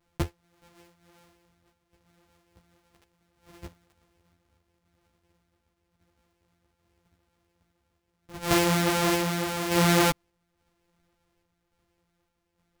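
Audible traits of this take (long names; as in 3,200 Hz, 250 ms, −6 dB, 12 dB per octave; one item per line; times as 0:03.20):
a buzz of ramps at a fixed pitch in blocks of 256 samples
sample-and-hold tremolo
a shimmering, thickened sound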